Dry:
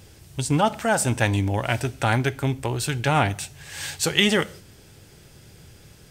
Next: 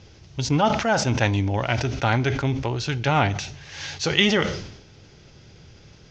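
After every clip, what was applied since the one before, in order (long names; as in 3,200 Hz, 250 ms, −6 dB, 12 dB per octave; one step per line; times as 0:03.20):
Butterworth low-pass 6,500 Hz 72 dB per octave
notch filter 1,700 Hz, Q 22
level that may fall only so fast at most 67 dB per second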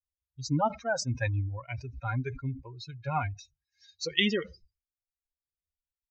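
spectral dynamics exaggerated over time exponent 3
level −3.5 dB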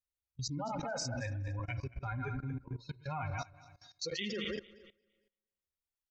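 feedback delay that plays each chunk backwards 114 ms, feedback 44%, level −6 dB
spring reverb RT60 1.1 s, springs 33 ms, chirp 50 ms, DRR 16 dB
output level in coarse steps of 20 dB
level +2.5 dB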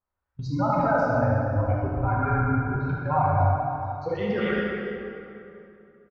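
auto-filter low-pass sine 0.48 Hz 650–1,600 Hz
single-tap delay 73 ms −8 dB
dense smooth reverb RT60 2.8 s, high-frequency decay 0.65×, DRR −3.5 dB
level +8.5 dB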